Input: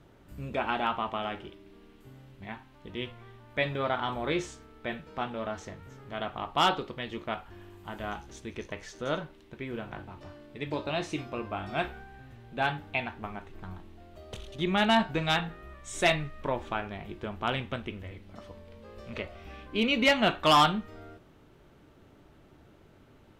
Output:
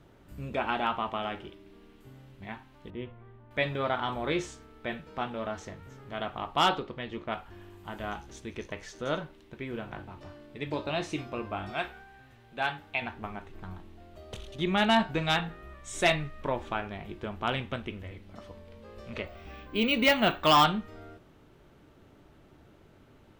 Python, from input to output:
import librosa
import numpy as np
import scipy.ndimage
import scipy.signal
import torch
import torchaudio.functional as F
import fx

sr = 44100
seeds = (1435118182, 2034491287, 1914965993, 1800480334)

y = fx.spacing_loss(x, sr, db_at_10k=44, at=(2.9, 3.51))
y = fx.lowpass(y, sr, hz=2900.0, slope=6, at=(6.79, 7.32))
y = fx.low_shelf(y, sr, hz=460.0, db=-9.0, at=(11.72, 13.02))
y = fx.resample_bad(y, sr, factor=2, down='filtered', up='hold', at=(19.26, 20.64))